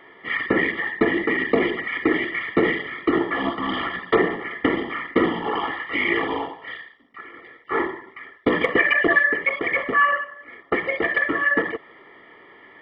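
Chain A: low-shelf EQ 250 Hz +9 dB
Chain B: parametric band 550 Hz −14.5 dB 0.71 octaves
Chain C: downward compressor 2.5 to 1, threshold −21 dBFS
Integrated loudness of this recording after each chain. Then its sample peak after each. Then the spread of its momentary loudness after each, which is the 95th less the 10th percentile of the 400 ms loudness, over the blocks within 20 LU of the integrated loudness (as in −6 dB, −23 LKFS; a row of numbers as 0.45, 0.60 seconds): −20.5, −23.5, −25.0 LKFS; −2.5, −7.0, −8.0 dBFS; 10, 16, 13 LU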